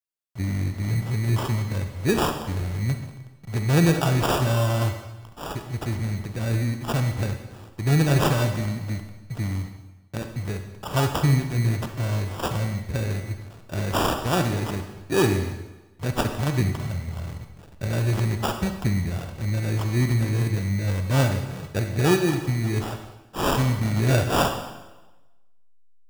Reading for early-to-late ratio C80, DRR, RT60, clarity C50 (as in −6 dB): 9.0 dB, 6.0 dB, 1.1 s, 7.0 dB